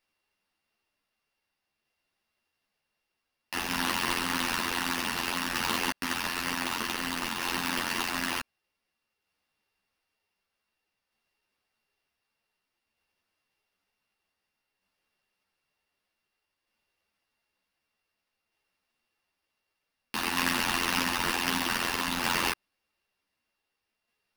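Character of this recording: a buzz of ramps at a fixed pitch in blocks of 16 samples; tremolo saw down 0.54 Hz, depth 30%; aliases and images of a low sample rate 7.5 kHz, jitter 20%; a shimmering, thickened sound

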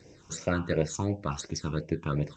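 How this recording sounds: phasing stages 8, 2.8 Hz, lowest notch 560–1300 Hz; G.722

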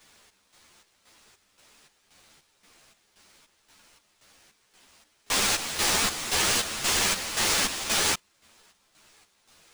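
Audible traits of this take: a quantiser's noise floor 10-bit, dither triangular; chopped level 1.9 Hz, depth 65%, duty 55%; aliases and images of a low sample rate 15 kHz, jitter 0%; a shimmering, thickened sound

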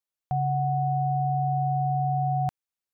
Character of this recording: noise floor -92 dBFS; spectral tilt -3.0 dB/octave

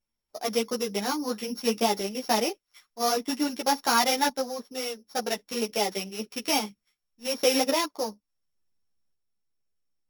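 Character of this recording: a buzz of ramps at a fixed pitch in blocks of 8 samples; random-step tremolo; a shimmering, thickened sound

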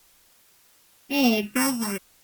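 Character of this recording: a buzz of ramps at a fixed pitch in blocks of 16 samples; phasing stages 4, 0.99 Hz, lowest notch 410–1800 Hz; a quantiser's noise floor 10-bit, dither triangular; Opus

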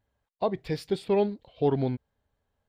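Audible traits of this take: noise floor -83 dBFS; spectral tilt -7.0 dB/octave

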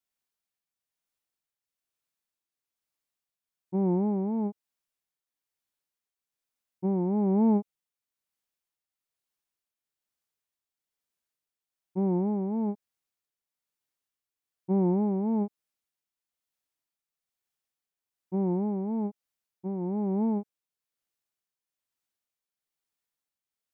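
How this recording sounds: tremolo triangle 1.1 Hz, depth 50%

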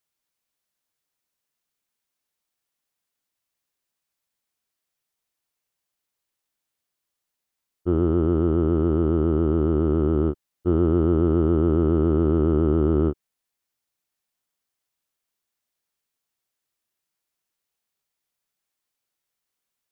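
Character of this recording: noise floor -83 dBFS; spectral tilt -8.0 dB/octave

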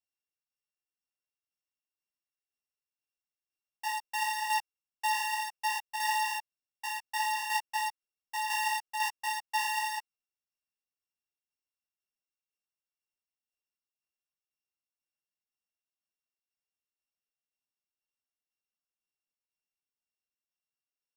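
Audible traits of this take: a buzz of ramps at a fixed pitch in blocks of 16 samples; tremolo saw down 2 Hz, depth 55%; a shimmering, thickened sound

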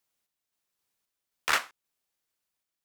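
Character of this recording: random-step tremolo 3.8 Hz

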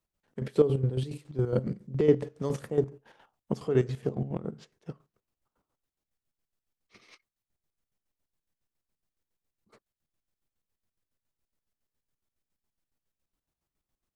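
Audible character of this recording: chopped level 7.2 Hz, depth 65%, duty 45%

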